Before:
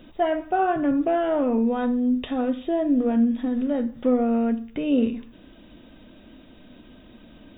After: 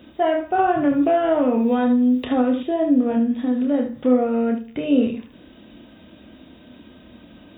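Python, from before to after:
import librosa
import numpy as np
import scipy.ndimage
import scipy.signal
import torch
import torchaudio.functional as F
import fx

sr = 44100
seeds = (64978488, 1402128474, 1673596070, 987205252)

y = scipy.signal.sosfilt(scipy.signal.butter(4, 52.0, 'highpass', fs=sr, output='sos'), x)
y = fx.room_early_taps(y, sr, ms=(28, 74), db=(-6.0, -9.0))
y = fx.band_squash(y, sr, depth_pct=100, at=(0.58, 2.63))
y = F.gain(torch.from_numpy(y), 2.0).numpy()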